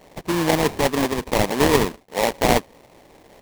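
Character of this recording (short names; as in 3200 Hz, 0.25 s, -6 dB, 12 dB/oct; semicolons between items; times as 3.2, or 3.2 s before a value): aliases and images of a low sample rate 1400 Hz, jitter 20%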